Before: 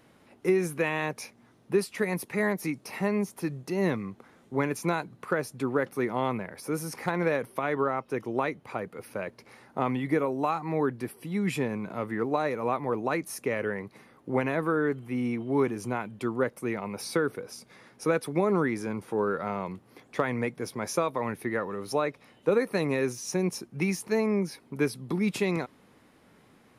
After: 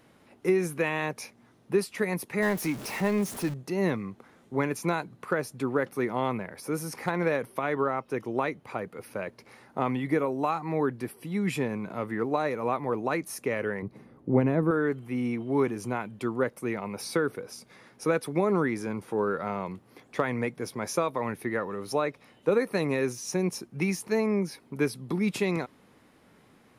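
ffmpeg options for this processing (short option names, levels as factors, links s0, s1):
-filter_complex "[0:a]asettb=1/sr,asplit=3[s0][s1][s2];[s0]atrim=end=2.424[s3];[s1]atrim=start=2.42:end=3.54,asetpts=PTS-STARTPTS,afade=t=in:d=0.004:c=qsin,afade=t=out:st=1.116:d=0.004:c=qsin,aeval=exprs='val(0)+0.5*0.0178*sgn(val(0))':c=same[s4];[s2]atrim=start=3.536[s5];[s3][s4]acrossfade=d=0.004:c1=hsin:c2=qsin[s6];[s6][s5]acrossfade=d=0.004:c1=qsin:c2=hsin,asettb=1/sr,asplit=3[s7][s8][s9];[s7]atrim=end=13.824[s10];[s8]atrim=start=13.82:end=14.71,asetpts=PTS-STARTPTS,afade=t=in:d=0.004:c=qsin,afade=t=out:st=0.886:d=0.004:c=qsin,tiltshelf=f=650:g=9[s11];[s9]atrim=start=14.706[s12];[s10][s11]acrossfade=d=0.004:c1=hsin:c2=qsin[s13];[s13][s12]acrossfade=d=0.004:c1=qsin:c2=hsin"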